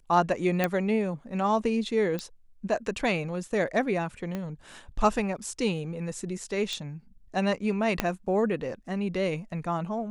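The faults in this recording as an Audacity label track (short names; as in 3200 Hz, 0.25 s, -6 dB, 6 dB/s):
0.640000	0.640000	pop -11 dBFS
2.190000	2.190000	pop -18 dBFS
4.350000	4.350000	pop -20 dBFS
6.730000	6.730000	pop -20 dBFS
8.000000	8.000000	pop -9 dBFS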